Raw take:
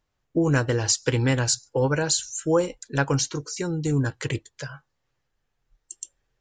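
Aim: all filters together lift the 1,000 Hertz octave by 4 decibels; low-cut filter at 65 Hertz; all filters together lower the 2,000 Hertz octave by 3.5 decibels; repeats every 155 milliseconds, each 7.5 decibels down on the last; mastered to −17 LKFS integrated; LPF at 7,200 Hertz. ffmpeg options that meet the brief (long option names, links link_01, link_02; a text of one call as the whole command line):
ffmpeg -i in.wav -af "highpass=65,lowpass=7200,equalizer=frequency=1000:width_type=o:gain=7,equalizer=frequency=2000:width_type=o:gain=-8.5,aecho=1:1:155|310|465|620|775:0.422|0.177|0.0744|0.0312|0.0131,volume=7dB" out.wav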